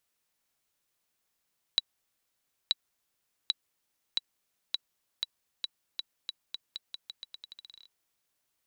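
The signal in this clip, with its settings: bouncing ball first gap 0.93 s, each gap 0.85, 3920 Hz, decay 27 ms -10.5 dBFS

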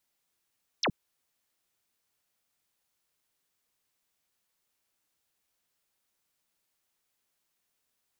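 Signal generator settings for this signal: laser zap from 6600 Hz, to 120 Hz, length 0.07 s sine, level -24 dB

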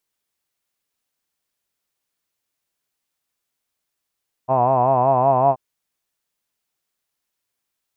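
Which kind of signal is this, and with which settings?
formant vowel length 1.08 s, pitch 126 Hz, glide +1 st, F1 700 Hz, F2 1000 Hz, F3 2600 Hz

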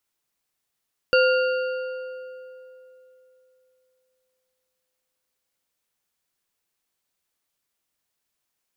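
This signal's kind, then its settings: metal hit bar, length 6.37 s, lowest mode 513 Hz, modes 4, decay 3.26 s, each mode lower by 4 dB, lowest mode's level -15 dB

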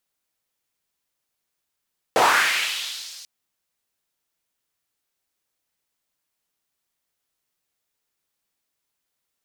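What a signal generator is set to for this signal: swept filtered noise white, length 1.09 s bandpass, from 510 Hz, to 5200 Hz, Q 2.1, linear, gain ramp -35 dB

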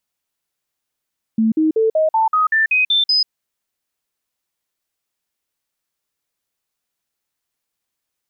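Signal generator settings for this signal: stepped sine 222 Hz up, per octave 2, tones 10, 0.14 s, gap 0.05 s -12 dBFS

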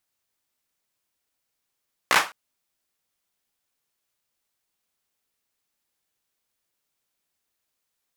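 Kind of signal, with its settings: hand clap length 0.21 s, apart 16 ms, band 1200 Hz, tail 0.27 s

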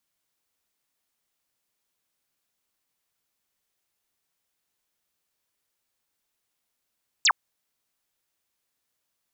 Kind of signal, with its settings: laser zap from 8300 Hz, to 800 Hz, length 0.06 s sine, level -16 dB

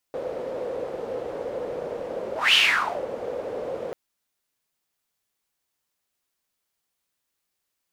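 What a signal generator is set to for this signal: whoosh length 3.79 s, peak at 2.4, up 0.21 s, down 0.53 s, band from 510 Hz, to 3000 Hz, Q 6.7, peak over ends 14 dB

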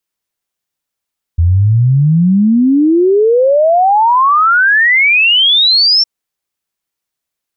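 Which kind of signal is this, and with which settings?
log sweep 81 Hz -> 5500 Hz 4.66 s -6 dBFS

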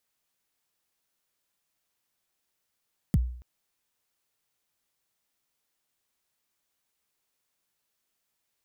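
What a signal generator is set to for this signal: kick drum length 0.28 s, from 230 Hz, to 61 Hz, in 33 ms, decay 0.56 s, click on, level -16 dB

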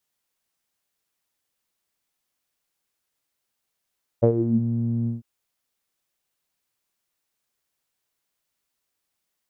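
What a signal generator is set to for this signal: synth note saw A#2 12 dB/oct, low-pass 200 Hz, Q 7.9, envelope 1.5 oct, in 0.38 s, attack 18 ms, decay 0.08 s, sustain -10 dB, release 0.15 s, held 0.85 s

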